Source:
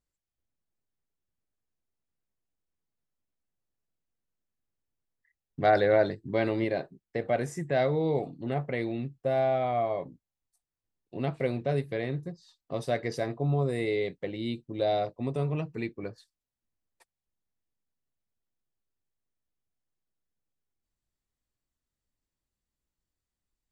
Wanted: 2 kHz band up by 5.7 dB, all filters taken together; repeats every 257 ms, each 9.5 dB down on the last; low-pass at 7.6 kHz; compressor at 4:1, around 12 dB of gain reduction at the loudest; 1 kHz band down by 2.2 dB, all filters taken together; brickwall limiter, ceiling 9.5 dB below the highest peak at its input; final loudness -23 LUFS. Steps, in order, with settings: low-pass 7.6 kHz; peaking EQ 1 kHz -5.5 dB; peaking EQ 2 kHz +8.5 dB; compression 4:1, threshold -33 dBFS; peak limiter -29.5 dBFS; feedback delay 257 ms, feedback 33%, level -9.5 dB; trim +17 dB

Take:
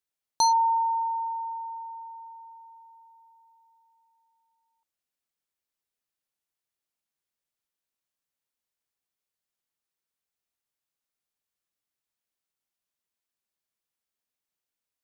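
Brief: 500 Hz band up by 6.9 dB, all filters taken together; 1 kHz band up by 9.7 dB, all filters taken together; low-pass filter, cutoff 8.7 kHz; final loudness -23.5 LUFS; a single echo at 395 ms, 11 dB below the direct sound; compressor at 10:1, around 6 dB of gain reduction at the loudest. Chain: low-pass 8.7 kHz; peaking EQ 500 Hz +5.5 dB; peaking EQ 1 kHz +9 dB; compression 10:1, threshold -16 dBFS; delay 395 ms -11 dB; trim -2.5 dB

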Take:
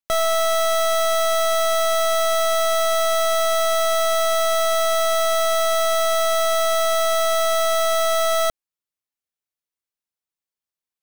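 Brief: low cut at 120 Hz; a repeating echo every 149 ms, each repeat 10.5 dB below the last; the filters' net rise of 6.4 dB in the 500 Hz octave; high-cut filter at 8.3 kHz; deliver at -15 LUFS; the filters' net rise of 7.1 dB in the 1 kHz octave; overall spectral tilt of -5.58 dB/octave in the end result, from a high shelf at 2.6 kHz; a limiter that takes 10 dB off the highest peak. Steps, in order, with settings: high-pass 120 Hz; low-pass 8.3 kHz; peaking EQ 500 Hz +4 dB; peaking EQ 1 kHz +8.5 dB; treble shelf 2.6 kHz +8 dB; peak limiter -17 dBFS; feedback delay 149 ms, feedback 30%, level -10.5 dB; trim +8 dB

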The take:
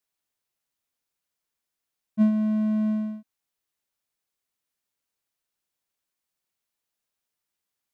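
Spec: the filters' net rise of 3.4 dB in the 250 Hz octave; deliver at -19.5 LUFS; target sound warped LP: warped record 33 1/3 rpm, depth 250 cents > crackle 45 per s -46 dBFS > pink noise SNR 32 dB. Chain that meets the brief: peaking EQ 250 Hz +4 dB; warped record 33 1/3 rpm, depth 250 cents; crackle 45 per s -46 dBFS; pink noise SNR 32 dB; trim +2.5 dB

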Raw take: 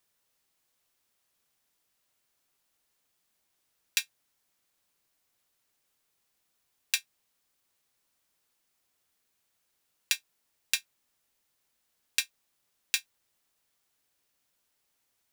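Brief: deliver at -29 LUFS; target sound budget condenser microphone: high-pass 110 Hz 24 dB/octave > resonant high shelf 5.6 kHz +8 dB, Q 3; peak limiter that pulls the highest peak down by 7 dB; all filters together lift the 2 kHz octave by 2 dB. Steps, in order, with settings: peaking EQ 2 kHz +5 dB; peak limiter -9.5 dBFS; high-pass 110 Hz 24 dB/octave; resonant high shelf 5.6 kHz +8 dB, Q 3; trim +2 dB

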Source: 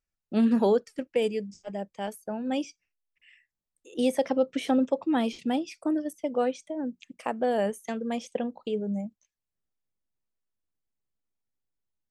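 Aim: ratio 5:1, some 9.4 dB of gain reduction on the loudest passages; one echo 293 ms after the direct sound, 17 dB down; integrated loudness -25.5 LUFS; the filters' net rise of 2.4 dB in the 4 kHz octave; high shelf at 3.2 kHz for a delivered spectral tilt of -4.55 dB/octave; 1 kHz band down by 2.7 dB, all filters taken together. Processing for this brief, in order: peaking EQ 1 kHz -4 dB; treble shelf 3.2 kHz -4.5 dB; peaking EQ 4 kHz +7 dB; compression 5:1, threshold -30 dBFS; delay 293 ms -17 dB; trim +10 dB

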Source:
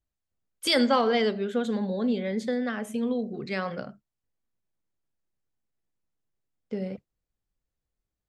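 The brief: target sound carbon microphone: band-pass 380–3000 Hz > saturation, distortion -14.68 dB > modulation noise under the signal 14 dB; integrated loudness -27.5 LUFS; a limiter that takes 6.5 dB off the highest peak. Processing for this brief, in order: peak limiter -18 dBFS; band-pass 380–3000 Hz; saturation -25.5 dBFS; modulation noise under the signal 14 dB; trim +7 dB

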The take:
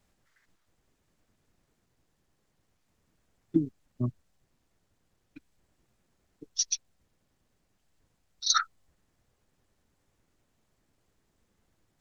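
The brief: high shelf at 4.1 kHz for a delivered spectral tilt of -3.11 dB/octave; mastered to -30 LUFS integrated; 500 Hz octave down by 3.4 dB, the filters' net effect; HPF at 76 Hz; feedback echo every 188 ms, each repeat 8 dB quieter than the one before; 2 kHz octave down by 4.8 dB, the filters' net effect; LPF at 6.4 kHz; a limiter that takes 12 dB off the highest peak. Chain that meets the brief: high-pass 76 Hz; low-pass 6.4 kHz; peaking EQ 500 Hz -7.5 dB; peaking EQ 2 kHz -7.5 dB; treble shelf 4.1 kHz +6 dB; peak limiter -20.5 dBFS; feedback delay 188 ms, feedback 40%, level -8 dB; trim +6 dB

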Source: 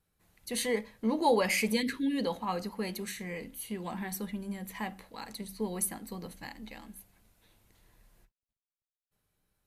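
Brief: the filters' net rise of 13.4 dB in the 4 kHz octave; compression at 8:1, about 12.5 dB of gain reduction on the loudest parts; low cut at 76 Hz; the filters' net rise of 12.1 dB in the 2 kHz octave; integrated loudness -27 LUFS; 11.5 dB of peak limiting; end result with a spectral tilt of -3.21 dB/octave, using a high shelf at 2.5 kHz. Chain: high-pass 76 Hz; peaking EQ 2 kHz +8 dB; treble shelf 2.5 kHz +8 dB; peaking EQ 4 kHz +7 dB; compression 8:1, threshold -27 dBFS; trim +9.5 dB; peak limiter -17.5 dBFS

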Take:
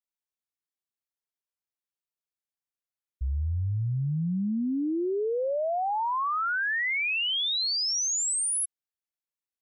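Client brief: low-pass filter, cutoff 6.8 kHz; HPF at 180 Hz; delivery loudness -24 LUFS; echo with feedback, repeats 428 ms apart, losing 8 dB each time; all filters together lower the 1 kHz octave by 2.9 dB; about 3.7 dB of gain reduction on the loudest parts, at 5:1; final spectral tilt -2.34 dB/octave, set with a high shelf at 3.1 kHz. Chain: high-pass 180 Hz; low-pass 6.8 kHz; peaking EQ 1 kHz -4.5 dB; treble shelf 3.1 kHz +5.5 dB; compression 5:1, threshold -28 dBFS; feedback delay 428 ms, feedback 40%, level -8 dB; trim +4.5 dB

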